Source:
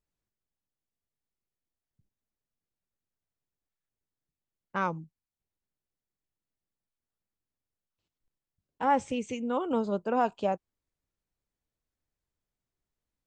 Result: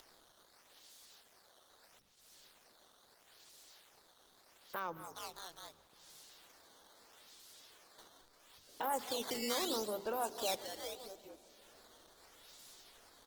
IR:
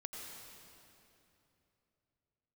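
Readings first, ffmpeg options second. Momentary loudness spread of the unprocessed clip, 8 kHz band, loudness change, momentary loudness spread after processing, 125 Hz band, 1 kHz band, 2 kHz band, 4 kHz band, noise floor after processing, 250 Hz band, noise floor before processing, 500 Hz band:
8 LU, +9.0 dB, −9.5 dB, 22 LU, −17.5 dB, −10.5 dB, −7.5 dB, +8.0 dB, −68 dBFS, −13.5 dB, below −85 dBFS, −8.5 dB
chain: -filter_complex "[0:a]asplit=5[link_01][link_02][link_03][link_04][link_05];[link_02]adelay=203,afreqshift=-62,volume=-23dB[link_06];[link_03]adelay=406,afreqshift=-124,volume=-28.2dB[link_07];[link_04]adelay=609,afreqshift=-186,volume=-33.4dB[link_08];[link_05]adelay=812,afreqshift=-248,volume=-38.6dB[link_09];[link_01][link_06][link_07][link_08][link_09]amix=inputs=5:normalize=0,acompressor=threshold=-42dB:ratio=5,alimiter=level_in=14dB:limit=-24dB:level=0:latency=1:release=31,volume=-14dB,acrusher=samples=10:mix=1:aa=0.000001:lfo=1:lforange=16:lforate=0.77,acompressor=mode=upward:threshold=-53dB:ratio=2.5,bandreject=frequency=50:width_type=h:width=6,bandreject=frequency=100:width_type=h:width=6,bandreject=frequency=150:width_type=h:width=6,bandreject=frequency=200:width_type=h:width=6,bandreject=frequency=250:width_type=h:width=6,bandreject=frequency=300:width_type=h:width=6,bandreject=frequency=350:width_type=h:width=6,bandreject=frequency=400:width_type=h:width=6,asplit=2[link_10][link_11];[1:a]atrim=start_sample=2205,asetrate=37485,aresample=44100,lowshelf=frequency=110:gain=11[link_12];[link_11][link_12]afir=irnorm=-1:irlink=0,volume=-12.5dB[link_13];[link_10][link_13]amix=inputs=2:normalize=0,aexciter=amount=3.9:drive=8.1:freq=3500,acrossover=split=310 4200:gain=0.126 1 0.251[link_14][link_15][link_16];[link_14][link_15][link_16]amix=inputs=3:normalize=0,volume=9.5dB" -ar 48000 -c:a libopus -b:a 16k

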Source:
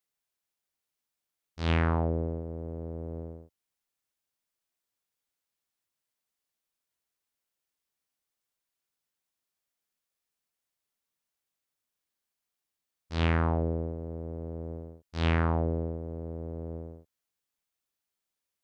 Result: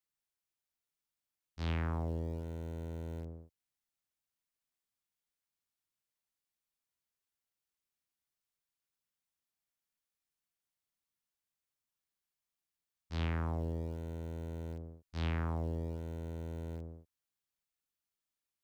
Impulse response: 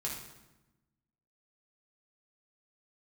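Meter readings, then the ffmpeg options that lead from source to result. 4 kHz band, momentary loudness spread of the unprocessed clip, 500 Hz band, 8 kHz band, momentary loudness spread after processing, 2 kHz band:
−9.5 dB, 15 LU, −9.5 dB, can't be measured, 11 LU, −11.0 dB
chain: -filter_complex "[0:a]acrossover=split=470|540[link_01][link_02][link_03];[link_02]acrusher=bits=5:dc=4:mix=0:aa=0.000001[link_04];[link_01][link_04][link_03]amix=inputs=3:normalize=0,lowshelf=frequency=170:gain=4,acompressor=threshold=-30dB:ratio=2,volume=-5.5dB"

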